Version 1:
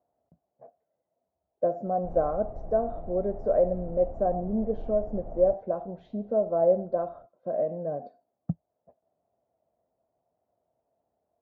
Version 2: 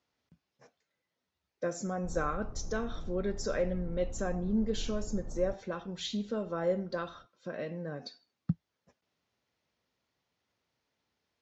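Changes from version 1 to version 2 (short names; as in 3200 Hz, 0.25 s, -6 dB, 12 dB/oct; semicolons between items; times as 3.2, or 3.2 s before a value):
background: add Gaussian blur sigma 7.2 samples; master: remove synth low-pass 670 Hz, resonance Q 7.8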